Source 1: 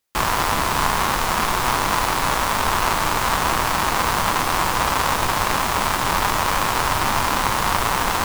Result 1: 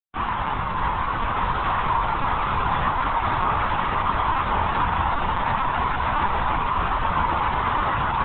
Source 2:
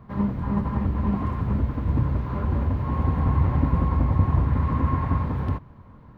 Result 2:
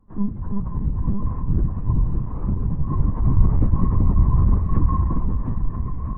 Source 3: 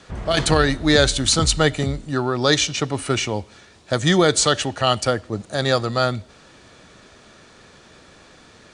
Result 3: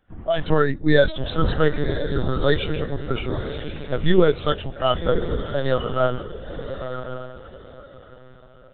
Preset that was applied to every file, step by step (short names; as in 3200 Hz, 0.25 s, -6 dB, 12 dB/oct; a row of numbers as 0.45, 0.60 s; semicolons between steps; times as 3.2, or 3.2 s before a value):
diffused feedback echo 1.046 s, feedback 40%, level -4 dB; LPC vocoder at 8 kHz pitch kept; spectral expander 1.5:1; match loudness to -23 LUFS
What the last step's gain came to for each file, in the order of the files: -4.0, +4.0, 0.0 dB